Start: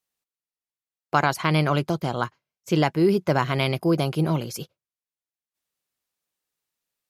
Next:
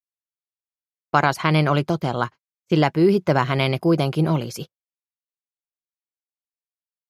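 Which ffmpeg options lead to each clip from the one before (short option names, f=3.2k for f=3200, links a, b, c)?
-af "agate=range=-31dB:threshold=-37dB:ratio=16:detection=peak,highshelf=f=7.8k:g=-8,volume=3dB"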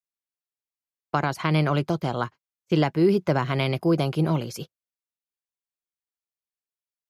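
-filter_complex "[0:a]acrossover=split=450[a][b];[b]acompressor=threshold=-20dB:ratio=3[c];[a][c]amix=inputs=2:normalize=0,volume=-3dB"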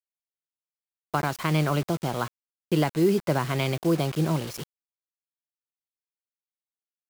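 -af "acrusher=bits=5:mix=0:aa=0.000001,volume=-2dB"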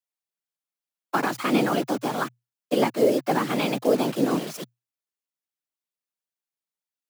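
-af "afftfilt=real='hypot(re,im)*cos(2*PI*random(0))':imag='hypot(re,im)*sin(2*PI*random(1))':win_size=512:overlap=0.75,afreqshift=120,volume=7.5dB"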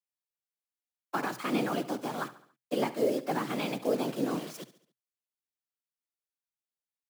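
-af "aecho=1:1:70|140|210|280:0.158|0.0777|0.0381|0.0186,volume=-8dB"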